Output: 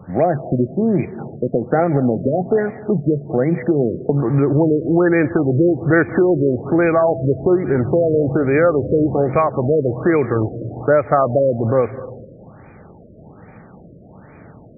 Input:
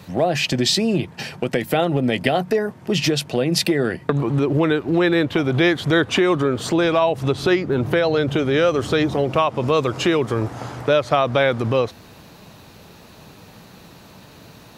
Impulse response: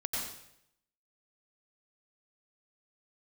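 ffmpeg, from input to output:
-filter_complex "[0:a]bandreject=f=1k:w=7.3,asplit=2[a][b];[1:a]atrim=start_sample=2205,asetrate=23373,aresample=44100[c];[b][c]afir=irnorm=-1:irlink=0,volume=-22.5dB[d];[a][d]amix=inputs=2:normalize=0,afftfilt=real='re*lt(b*sr/1024,630*pow(2500/630,0.5+0.5*sin(2*PI*1.2*pts/sr)))':imag='im*lt(b*sr/1024,630*pow(2500/630,0.5+0.5*sin(2*PI*1.2*pts/sr)))':win_size=1024:overlap=0.75,volume=2.5dB"

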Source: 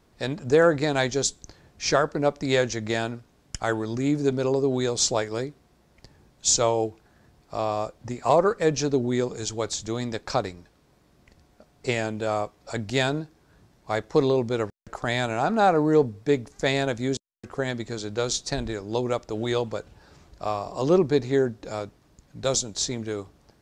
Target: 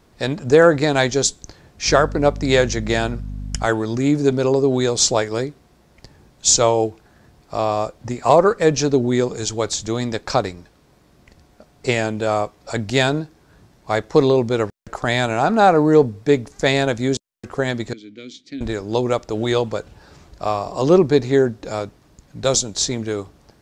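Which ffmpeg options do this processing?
-filter_complex "[0:a]asettb=1/sr,asplit=3[a][b][c];[a]atrim=end=1.884[d];[b]atrim=start=1.88:end=3.66,asetpts=PTS-STARTPTS,afade=t=in:d=0.004:c=qsin,afade=t=out:st=1.776:d=0.004:c=qsin,aeval=exprs='val(0)+0.02*(sin(2*PI*50*n/s)+sin(2*PI*2*50*n/s)/2+sin(2*PI*3*50*n/s)/3+sin(2*PI*4*50*n/s)/4+sin(2*PI*5*50*n/s)/5)':c=same[e];[c]atrim=start=3.656[f];[d][e]acrossfade=d=0.004:c1=hsin:c2=qsin[g];[g][f]acrossfade=d=0.004:c1=qsin:c2=hsin,asettb=1/sr,asplit=3[h][i][j];[h]atrim=end=17.934[k];[i]atrim=start=17.93:end=18.61,asetpts=PTS-STARTPTS,afade=t=in:d=0.004:c=qsin,afade=t=out:st=0.676:d=0.004:c=qsin,asplit=3[l][m][n];[l]bandpass=f=270:t=q:w=8,volume=0dB[o];[m]bandpass=f=2.29k:t=q:w=8,volume=-6dB[p];[n]bandpass=f=3.01k:t=q:w=8,volume=-9dB[q];[o][p][q]amix=inputs=3:normalize=0[r];[j]atrim=start=18.606[s];[k][r]acrossfade=d=0.004:c1=hsin:c2=qsin[t];[t][s]acrossfade=d=0.004:c1=qsin:c2=hsin,volume=6.5dB"

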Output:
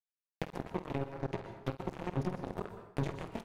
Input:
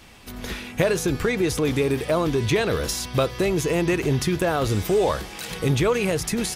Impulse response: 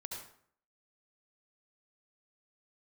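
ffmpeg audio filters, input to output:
-filter_complex "[0:a]highpass=f=64:p=1,bandreject=f=610:w=12,aecho=1:1:22|44:0.708|0.708,atempo=1.9,highshelf=f=4k:g=-10.5,bandreject=f=50:t=h:w=6,bandreject=f=100:t=h:w=6,bandreject=f=150:t=h:w=6,bandreject=f=200:t=h:w=6,bandreject=f=250:t=h:w=6,bandreject=f=300:t=h:w=6,bandreject=f=350:t=h:w=6,bandreject=f=400:t=h:w=6,bandreject=f=450:t=h:w=6,bandreject=f=500:t=h:w=6,acrossover=split=380[a][b];[b]acompressor=threshold=-33dB:ratio=5[c];[a][c]amix=inputs=2:normalize=0,acrusher=bits=2:mix=0:aa=0.5,asplit=2[d][e];[1:a]atrim=start_sample=2205,highshelf=f=6.8k:g=7.5,adelay=49[f];[e][f]afir=irnorm=-1:irlink=0,volume=-8dB[g];[d][g]amix=inputs=2:normalize=0,acompressor=threshold=-33dB:ratio=2,adynamicequalizer=threshold=0.002:dfrequency=2400:dqfactor=0.7:tfrequency=2400:tqfactor=0.7:attack=5:release=100:ratio=0.375:range=2.5:mode=cutabove:tftype=highshelf,volume=-4.5dB"

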